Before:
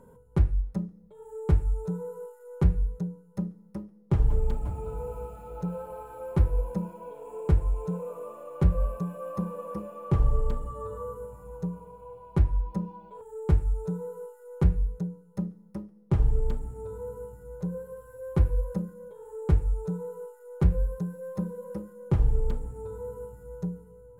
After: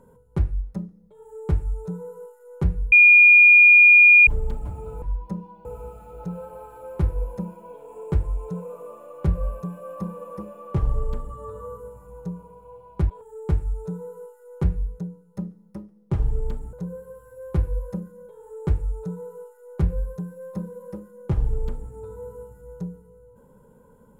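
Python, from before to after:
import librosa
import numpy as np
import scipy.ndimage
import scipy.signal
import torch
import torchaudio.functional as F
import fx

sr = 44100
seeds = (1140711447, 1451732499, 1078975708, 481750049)

y = fx.edit(x, sr, fx.bleep(start_s=2.92, length_s=1.35, hz=2430.0, db=-8.0),
    fx.move(start_s=12.47, length_s=0.63, to_s=5.02),
    fx.cut(start_s=16.73, length_s=0.82), tone=tone)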